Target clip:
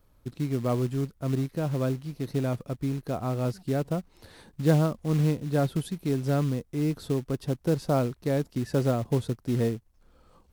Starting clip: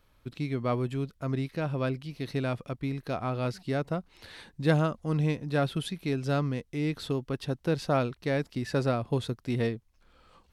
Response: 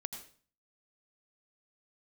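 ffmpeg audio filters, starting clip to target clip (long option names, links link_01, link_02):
-filter_complex "[0:a]equalizer=frequency=2600:width=0.55:gain=-12.5,acrossover=split=1000[link_01][link_02];[link_01]acrusher=bits=5:mode=log:mix=0:aa=0.000001[link_03];[link_03][link_02]amix=inputs=2:normalize=0,volume=3.5dB"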